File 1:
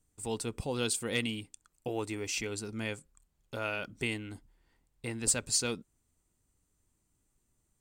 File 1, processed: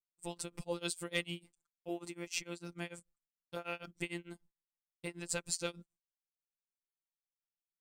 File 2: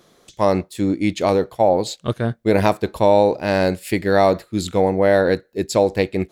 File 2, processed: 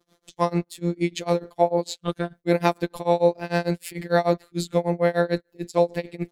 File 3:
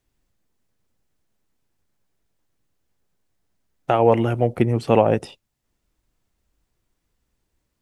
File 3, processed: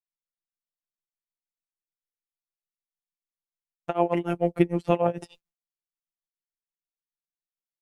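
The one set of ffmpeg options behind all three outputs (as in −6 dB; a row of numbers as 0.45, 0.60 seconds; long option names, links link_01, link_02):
-af "afftfilt=real='hypot(re,im)*cos(PI*b)':imag='0':win_size=1024:overlap=0.75,agate=range=-33dB:threshold=-52dB:ratio=3:detection=peak,tremolo=f=6.7:d=0.96,volume=2dB"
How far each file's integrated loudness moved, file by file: −7.0, −6.0, −6.5 LU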